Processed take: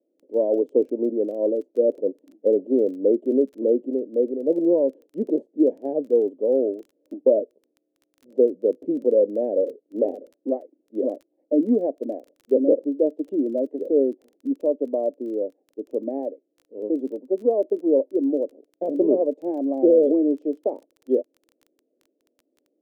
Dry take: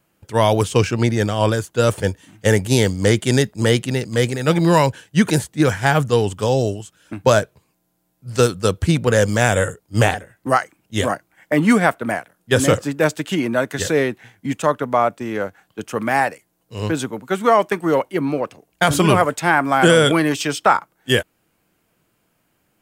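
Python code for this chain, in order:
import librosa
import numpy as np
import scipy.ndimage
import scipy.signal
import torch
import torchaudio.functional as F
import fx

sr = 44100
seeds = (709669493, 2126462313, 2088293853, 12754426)

y = scipy.signal.sosfilt(scipy.signal.ellip(3, 1.0, 50, [260.0, 580.0], 'bandpass', fs=sr, output='sos'), x)
y = fx.dmg_crackle(y, sr, seeds[0], per_s=16.0, level_db=-41.0)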